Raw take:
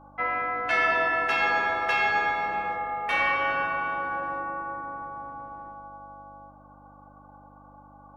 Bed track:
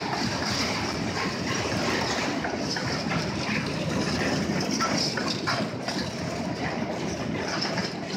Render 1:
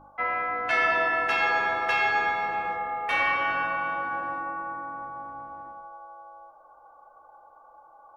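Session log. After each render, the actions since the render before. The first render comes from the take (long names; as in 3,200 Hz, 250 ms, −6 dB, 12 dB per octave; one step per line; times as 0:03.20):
hum removal 50 Hz, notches 12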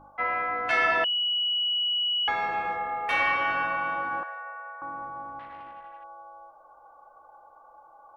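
0:01.04–0:02.28: beep over 2,930 Hz −23.5 dBFS
0:04.23–0:04.82: Chebyshev high-pass with heavy ripple 460 Hz, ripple 9 dB
0:05.39–0:06.04: saturating transformer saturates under 1,000 Hz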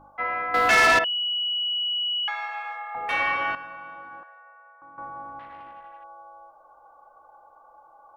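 0:00.54–0:00.99: leveller curve on the samples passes 3
0:02.20–0:02.95: Bessel high-pass filter 1,100 Hz, order 6
0:03.55–0:04.98: clip gain −11.5 dB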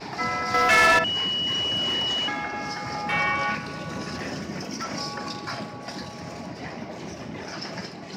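mix in bed track −6.5 dB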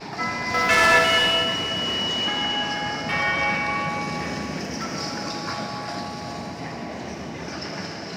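echo with a time of its own for lows and highs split 760 Hz, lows 437 ms, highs 277 ms, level −12 dB
reverb whose tail is shaped and stops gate 490 ms flat, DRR 0.5 dB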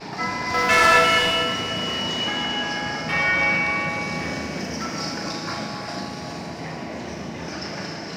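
flutter between parallel walls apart 6.3 metres, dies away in 0.3 s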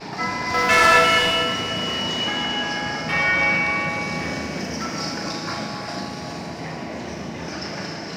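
level +1 dB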